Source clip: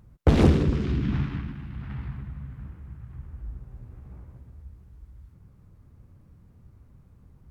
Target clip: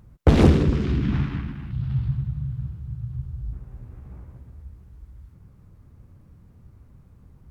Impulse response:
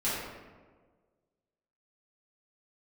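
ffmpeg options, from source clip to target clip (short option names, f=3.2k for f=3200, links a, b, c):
-filter_complex "[0:a]asettb=1/sr,asplit=3[a][b][c];[a]atrim=end=1.714[d];[b]atrim=start=1.71:end=3.53,asetpts=PTS-STARTPTS,afade=t=in:d=0.004:c=qsin,afade=t=out:st=1.816:d=0.004:c=qsin,equalizer=f=125:t=o:w=1:g=12,equalizer=f=250:t=o:w=1:g=-7,equalizer=f=500:t=o:w=1:g=-4,equalizer=f=1k:t=o:w=1:g=-5,equalizer=f=2k:t=o:w=1:g=-11,equalizer=f=4k:t=o:w=1:g=6[e];[c]atrim=start=3.526[f];[d][e]acrossfade=d=0.004:c1=hsin:c2=qsin[g];[g][f]acrossfade=d=0.004:c1=qsin:c2=hsin,volume=3dB"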